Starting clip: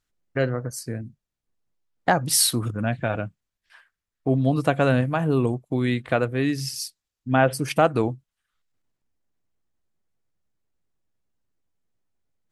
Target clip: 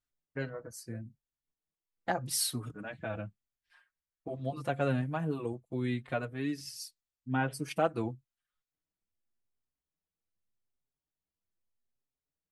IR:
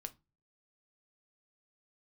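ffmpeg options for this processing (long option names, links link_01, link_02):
-filter_complex "[0:a]asplit=2[link_01][link_02];[link_02]adelay=5.2,afreqshift=0.84[link_03];[link_01][link_03]amix=inputs=2:normalize=1,volume=-9dB"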